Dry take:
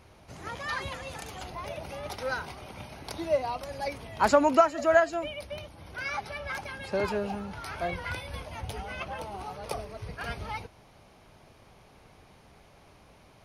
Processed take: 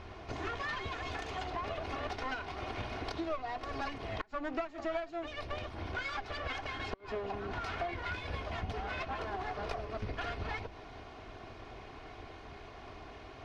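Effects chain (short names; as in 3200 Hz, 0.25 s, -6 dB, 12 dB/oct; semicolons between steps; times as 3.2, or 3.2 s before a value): minimum comb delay 2.8 ms; notches 60/120/180/240/300/360 Hz; compressor 8:1, threshold -44 dBFS, peak gain reduction 27 dB; air absorption 170 m; flipped gate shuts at -32 dBFS, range -29 dB; gain +10 dB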